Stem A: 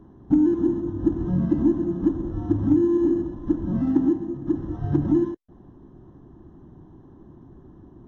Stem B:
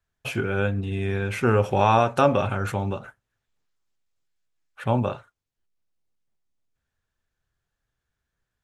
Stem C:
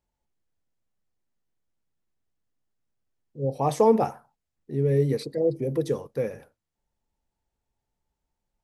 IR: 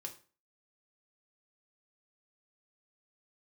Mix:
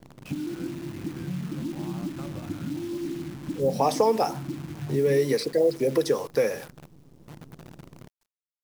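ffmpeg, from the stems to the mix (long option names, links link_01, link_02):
-filter_complex "[0:a]equalizer=frequency=150:width=1.6:gain=15,bandreject=frequency=102.9:width_type=h:width=4,bandreject=frequency=205.8:width_type=h:width=4,bandreject=frequency=308.7:width_type=h:width=4,volume=-6dB[link_01];[1:a]lowpass=2300,aemphasis=mode=production:type=bsi,acompressor=threshold=-23dB:ratio=6,volume=-13.5dB[link_02];[2:a]equalizer=frequency=96:width=0.44:gain=-14.5,dynaudnorm=framelen=360:gausssize=5:maxgain=12.5dB,adelay=200,volume=0dB[link_03];[link_01][link_02]amix=inputs=2:normalize=0,tremolo=f=0.52:d=0.43,acompressor=threshold=-28dB:ratio=12,volume=0dB[link_04];[link_03][link_04]amix=inputs=2:normalize=0,equalizer=frequency=5200:width=3.9:gain=10,acrossover=split=100|1000|2000|5600[link_05][link_06][link_07][link_08][link_09];[link_05]acompressor=threshold=-57dB:ratio=4[link_10];[link_06]acompressor=threshold=-20dB:ratio=4[link_11];[link_07]acompressor=threshold=-36dB:ratio=4[link_12];[link_08]acompressor=threshold=-40dB:ratio=4[link_13];[link_09]acompressor=threshold=-40dB:ratio=4[link_14];[link_10][link_11][link_12][link_13][link_14]amix=inputs=5:normalize=0,acrusher=bits=8:dc=4:mix=0:aa=0.000001"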